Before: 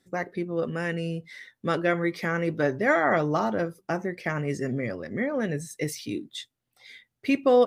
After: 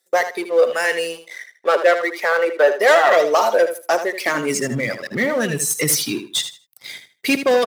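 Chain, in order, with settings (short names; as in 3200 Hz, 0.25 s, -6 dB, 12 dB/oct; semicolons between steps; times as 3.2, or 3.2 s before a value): RIAA curve recording; reverb removal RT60 1.2 s; 1.28–2.72 three-band isolator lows -12 dB, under 330 Hz, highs -15 dB, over 2500 Hz; sample leveller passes 3; high-pass sweep 510 Hz -> 130 Hz, 4.11–4.65; on a send: feedback echo 78 ms, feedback 21%, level -10 dB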